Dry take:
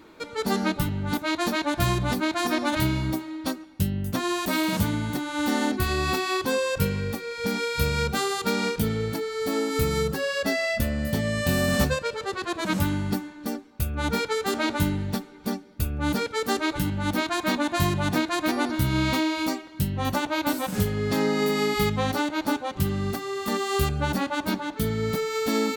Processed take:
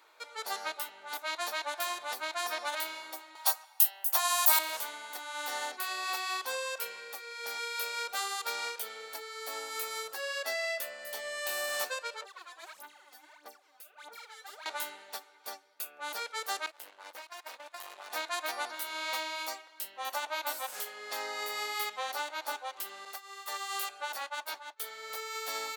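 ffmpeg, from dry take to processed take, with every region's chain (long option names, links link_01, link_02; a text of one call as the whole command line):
ffmpeg -i in.wav -filter_complex "[0:a]asettb=1/sr,asplit=3[link_01][link_02][link_03];[link_01]atrim=end=3.354[link_04];[link_02]atrim=start=3.35:end=4.59,asetpts=PTS-STARTPTS,afade=type=in:duration=0.004:curve=qsin,afade=type=out:start_time=1.236:duration=0.004:curve=qsin,highpass=frequency=810:width_type=q:width=3.5,aemphasis=mode=production:type=75kf[link_05];[link_03]atrim=start=4.586[link_06];[link_04][link_05]acrossfade=duration=0.004:curve1=hsin:curve2=qsin[link_07];[link_07][link_06]acrossfade=duration=0.004:curve1=qsin:curve2=hsin,asettb=1/sr,asplit=3[link_08][link_09][link_10];[link_08]atrim=end=12.224[link_11];[link_09]atrim=start=12.22:end=14.66,asetpts=PTS-STARTPTS,afade=type=in:duration=0.004:curve=qsin,afade=type=out:start_time=2.436:duration=0.004:curve=qsin,acompressor=threshold=-44dB:ratio=3:attack=3.2:release=140:knee=1:detection=peak,aphaser=in_gain=1:out_gain=1:delay=4:decay=0.77:speed=1.6:type=sinusoidal[link_12];[link_10]atrim=start=14.656[link_13];[link_11][link_12]acrossfade=duration=0.004:curve1=hsin:curve2=qsin[link_14];[link_14][link_13]acrossfade=duration=0.004:curve1=qsin:curve2=hsin,asettb=1/sr,asplit=3[link_15][link_16][link_17];[link_15]atrim=end=16.664[link_18];[link_16]atrim=start=16.66:end=18.1,asetpts=PTS-STARTPTS,afade=type=in:duration=0.004:curve=qsin,afade=type=out:start_time=1.436:duration=0.004:curve=qsin,agate=range=-14dB:threshold=-28dB:ratio=16:release=100:detection=peak,acompressor=threshold=-26dB:ratio=4:attack=3.2:release=140:knee=1:detection=peak,aeval=exprs='max(val(0),0)':channel_layout=same[link_19];[link_17]atrim=start=18.096[link_20];[link_18][link_19]acrossfade=duration=0.004:curve1=hsin:curve2=qsin[link_21];[link_21][link_20]acrossfade=duration=0.004:curve1=qsin:curve2=hsin,asettb=1/sr,asplit=3[link_22][link_23][link_24];[link_22]atrim=end=23.054[link_25];[link_23]atrim=start=23.05:end=25.1,asetpts=PTS-STARTPTS,afade=type=in:duration=0.004:curve=qsin,afade=type=out:start_time=2.046:duration=0.004:curve=qsin,agate=range=-33dB:threshold=-28dB:ratio=3:release=100:detection=peak,lowshelf=frequency=340:gain=-8[link_26];[link_24]atrim=start=25.096[link_27];[link_25][link_26]acrossfade=duration=0.004:curve1=hsin:curve2=qsin[link_28];[link_28][link_27]acrossfade=duration=0.004:curve1=qsin:curve2=hsin,highpass=frequency=610:width=0.5412,highpass=frequency=610:width=1.3066,highshelf=frequency=6400:gain=4.5,volume=-7dB" out.wav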